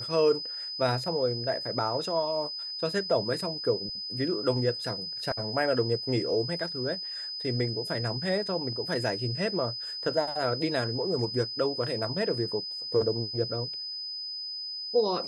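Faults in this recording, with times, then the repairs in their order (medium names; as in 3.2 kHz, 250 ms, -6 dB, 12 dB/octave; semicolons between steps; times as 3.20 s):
whine 5 kHz -34 dBFS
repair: band-stop 5 kHz, Q 30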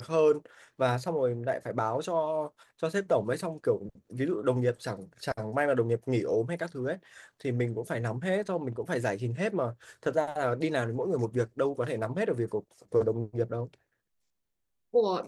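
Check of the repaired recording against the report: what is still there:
nothing left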